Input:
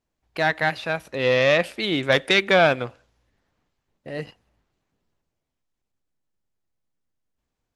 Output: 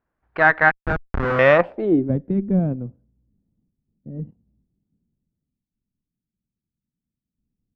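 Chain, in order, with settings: 0.71–1.39 Schmitt trigger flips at -20.5 dBFS; added harmonics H 6 -16 dB, 7 -33 dB, 8 -17 dB, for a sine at -5 dBFS; low-pass sweep 1500 Hz -> 210 Hz, 1.5–2.16; gain +3.5 dB

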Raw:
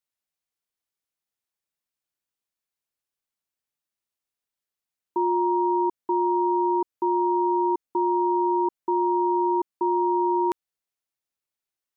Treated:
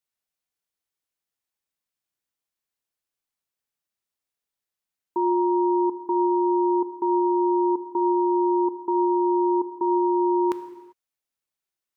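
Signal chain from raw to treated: non-linear reverb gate 0.42 s falling, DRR 9 dB

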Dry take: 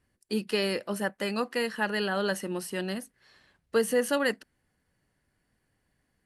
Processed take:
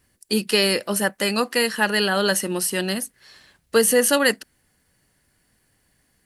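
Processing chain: high shelf 3700 Hz +11 dB; gain +7 dB

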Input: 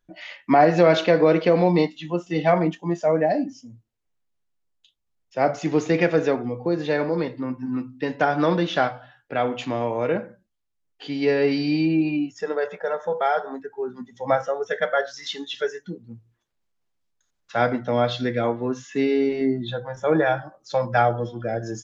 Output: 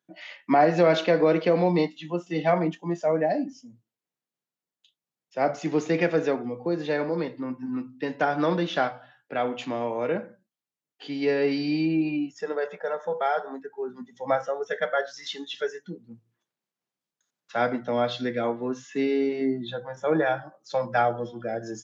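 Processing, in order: HPF 140 Hz 24 dB/oct; gain -3.5 dB

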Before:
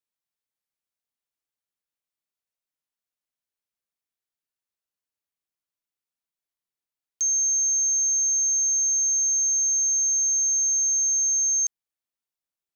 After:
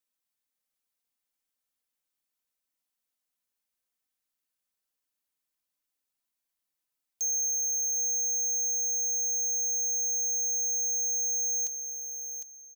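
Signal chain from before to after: high shelf 6000 Hz +5.5 dB; comb 3.9 ms, depth 50%; soft clip -27.5 dBFS, distortion -11 dB; feedback echo 0.755 s, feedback 15%, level -7.5 dB; on a send at -22.5 dB: reverb, pre-delay 0.146 s

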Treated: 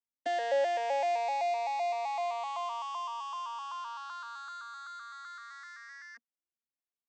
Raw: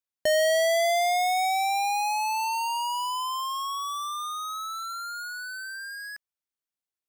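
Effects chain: arpeggiated vocoder minor triad, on A#3, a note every 0.128 s; gain -6.5 dB

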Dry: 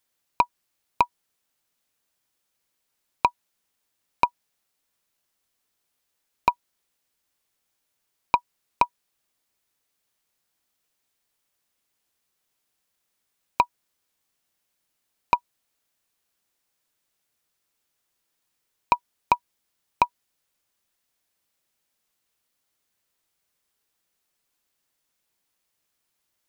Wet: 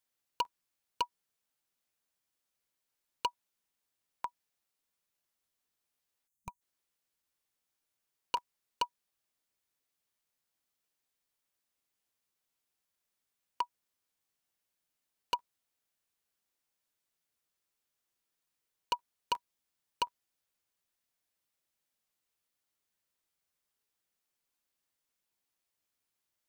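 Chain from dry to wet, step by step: spectral gain 6.27–6.61, 210–6000 Hz -18 dB; wavefolder -13 dBFS; crackling interface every 0.18 s, samples 512, repeat, from 0.44; gain -8.5 dB

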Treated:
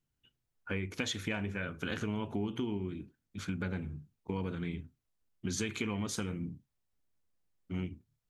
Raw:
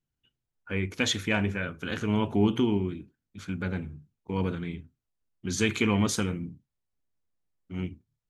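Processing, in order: compressor 6:1, threshold -34 dBFS, peak gain reduction 15 dB; gain +1.5 dB

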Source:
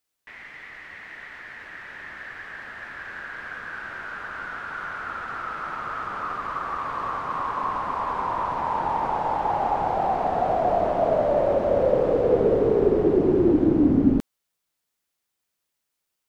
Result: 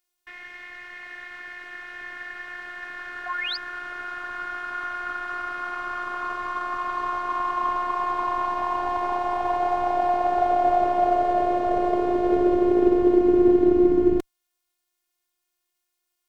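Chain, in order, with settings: painted sound rise, 3.26–3.57, 780–5100 Hz -30 dBFS; in parallel at -6 dB: one-sided clip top -24 dBFS; on the sum: robotiser 356 Hz

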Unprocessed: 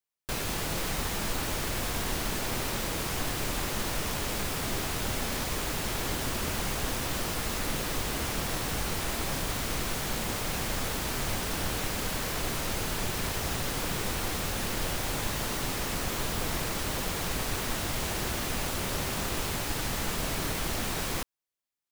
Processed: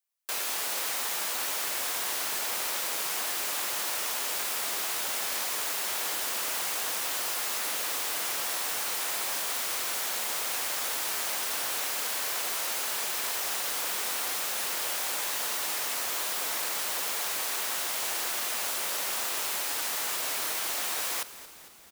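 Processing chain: HPF 660 Hz 12 dB/oct; high shelf 6300 Hz +6.5 dB; on a send: frequency-shifting echo 0.226 s, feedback 63%, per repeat -93 Hz, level -16 dB

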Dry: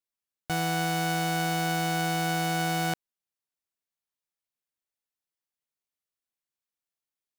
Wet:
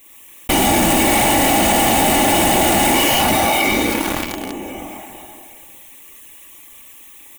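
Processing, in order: bell 830 Hz -3.5 dB 2.2 oct; fixed phaser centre 970 Hz, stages 8; plate-style reverb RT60 2.5 s, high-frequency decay 0.9×, DRR -5.5 dB; whisperiser; in parallel at -10 dB: fuzz box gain 46 dB, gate -55 dBFS; on the sum: comb 3.5 ms, depth 48%; fast leveller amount 70%; gain +5 dB

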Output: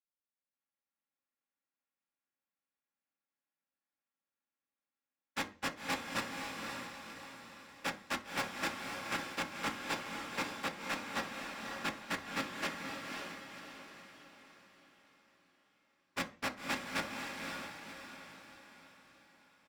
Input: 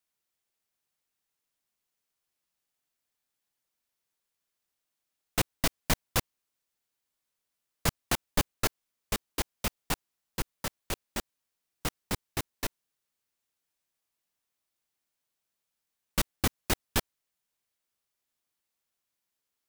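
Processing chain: spectral contrast lowered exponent 0.29; gate with hold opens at -56 dBFS; LPF 1700 Hz 12 dB/oct; comb 3.7 ms, depth 40%; sample leveller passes 5; limiter -50.5 dBFS, peak gain reduction 32 dB; AGC gain up to 7 dB; one-sided clip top -52 dBFS, bottom -47.5 dBFS; diffused feedback echo 0.537 s, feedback 47%, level -3 dB; reverb RT60 0.35 s, pre-delay 3 ms, DRR 5.5 dB; gain +16.5 dB

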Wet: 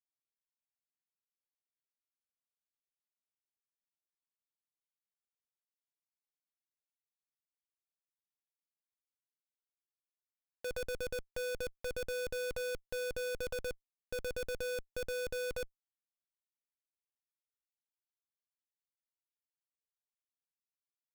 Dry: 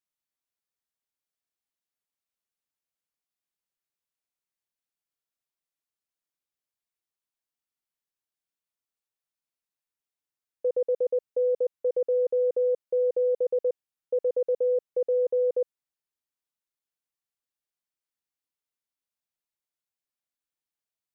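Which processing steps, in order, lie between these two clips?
in parallel at +2.5 dB: negative-ratio compressor -32 dBFS, ratio -0.5; on the sum: Schmitt trigger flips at -43 dBFS; gain -7 dB

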